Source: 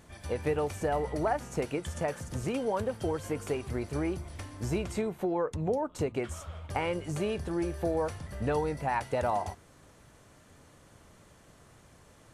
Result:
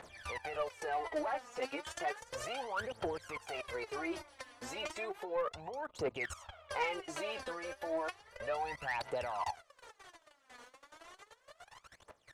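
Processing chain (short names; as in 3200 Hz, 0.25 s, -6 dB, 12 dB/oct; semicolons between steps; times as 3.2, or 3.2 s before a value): level quantiser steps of 19 dB; three-band isolator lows -22 dB, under 510 Hz, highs -12 dB, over 5600 Hz; phaser 0.33 Hz, delay 4.2 ms, feedback 77%; soft clip -33 dBFS, distortion -17 dB; gain +5.5 dB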